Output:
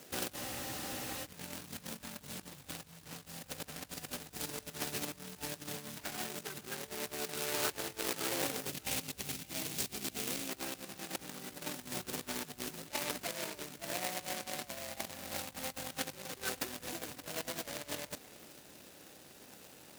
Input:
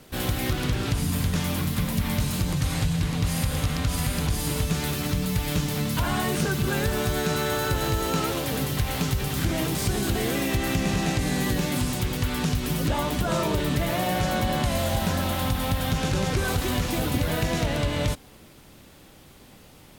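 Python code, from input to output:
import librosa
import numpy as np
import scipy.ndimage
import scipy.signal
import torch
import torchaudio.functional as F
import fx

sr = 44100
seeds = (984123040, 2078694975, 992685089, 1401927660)

p1 = scipy.ndimage.median_filter(x, 41, mode='constant')
p2 = fx.spec_box(p1, sr, start_s=8.73, length_s=1.76, low_hz=280.0, high_hz=2000.0, gain_db=-6)
p3 = fx.over_compress(p2, sr, threshold_db=-32.0, ratio=-0.5)
p4 = np.diff(p3, prepend=0.0)
p5 = p4 + fx.echo_single(p4, sr, ms=567, db=-23.5, dry=0)
p6 = fx.spec_freeze(p5, sr, seeds[0], at_s=0.38, hold_s=0.86)
p7 = fx.doppler_dist(p6, sr, depth_ms=0.35)
y = F.gain(torch.from_numpy(p7), 15.5).numpy()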